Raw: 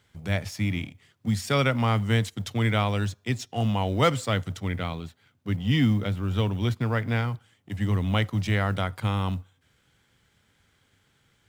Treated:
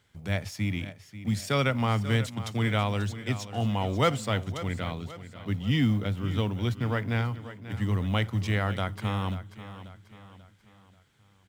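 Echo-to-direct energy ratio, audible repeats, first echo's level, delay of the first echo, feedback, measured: -12.5 dB, 4, -13.5 dB, 538 ms, 44%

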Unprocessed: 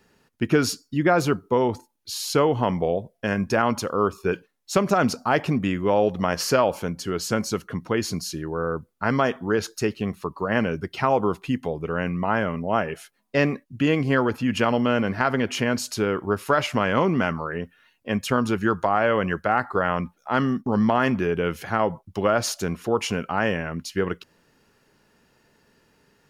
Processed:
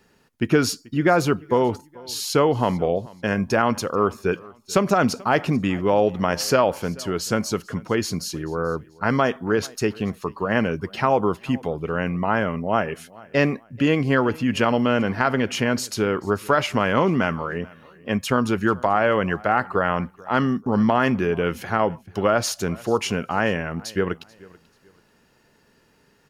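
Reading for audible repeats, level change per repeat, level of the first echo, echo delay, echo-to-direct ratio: 2, -10.5 dB, -23.0 dB, 436 ms, -22.5 dB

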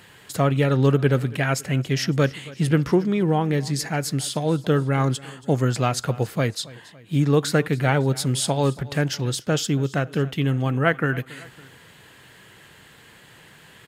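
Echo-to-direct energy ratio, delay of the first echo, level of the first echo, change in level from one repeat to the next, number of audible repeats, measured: -19.5 dB, 278 ms, -20.5 dB, -5.0 dB, 2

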